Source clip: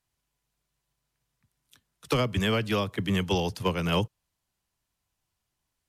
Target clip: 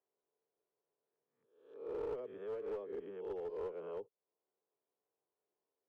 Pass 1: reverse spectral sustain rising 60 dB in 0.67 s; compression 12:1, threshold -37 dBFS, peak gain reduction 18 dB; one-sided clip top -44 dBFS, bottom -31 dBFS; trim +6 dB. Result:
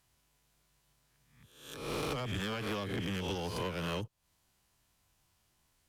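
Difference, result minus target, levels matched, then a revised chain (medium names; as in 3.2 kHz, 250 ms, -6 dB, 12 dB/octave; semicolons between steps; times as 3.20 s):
500 Hz band -6.0 dB
reverse spectral sustain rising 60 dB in 0.67 s; compression 12:1, threshold -37 dBFS, peak gain reduction 18 dB; ladder band-pass 470 Hz, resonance 70%; one-sided clip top -44 dBFS, bottom -31 dBFS; trim +6 dB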